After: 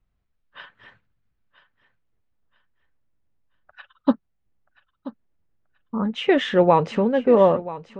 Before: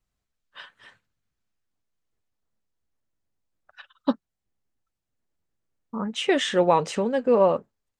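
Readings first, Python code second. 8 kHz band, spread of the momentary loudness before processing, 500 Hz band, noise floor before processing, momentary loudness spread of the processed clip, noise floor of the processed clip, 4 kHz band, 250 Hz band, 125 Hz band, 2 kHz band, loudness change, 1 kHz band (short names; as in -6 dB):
under -10 dB, 12 LU, +3.5 dB, -84 dBFS, 11 LU, -73 dBFS, -1.5 dB, +5.5 dB, +6.5 dB, +2.0 dB, +3.5 dB, +3.0 dB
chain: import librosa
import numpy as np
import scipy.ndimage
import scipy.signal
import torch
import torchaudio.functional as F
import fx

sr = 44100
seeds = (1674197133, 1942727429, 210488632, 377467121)

p1 = scipy.signal.sosfilt(scipy.signal.butter(2, 2900.0, 'lowpass', fs=sr, output='sos'), x)
p2 = fx.low_shelf(p1, sr, hz=200.0, db=7.0)
p3 = p2 + fx.echo_feedback(p2, sr, ms=981, feedback_pct=31, wet_db=-16.0, dry=0)
y = F.gain(torch.from_numpy(p3), 2.5).numpy()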